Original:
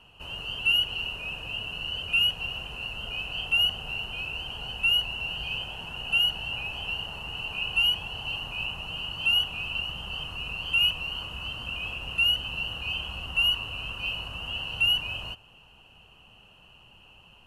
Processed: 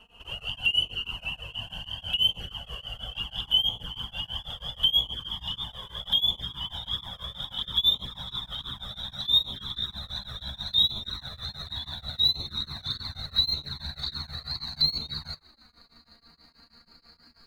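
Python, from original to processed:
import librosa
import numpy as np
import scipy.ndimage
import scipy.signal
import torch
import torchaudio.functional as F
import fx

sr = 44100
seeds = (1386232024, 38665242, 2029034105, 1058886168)

y = fx.pitch_glide(x, sr, semitones=8.0, runs='starting unshifted')
y = fx.env_flanger(y, sr, rest_ms=4.9, full_db=-26.0)
y = y * np.abs(np.cos(np.pi * 6.2 * np.arange(len(y)) / sr))
y = F.gain(torch.from_numpy(y), 5.0).numpy()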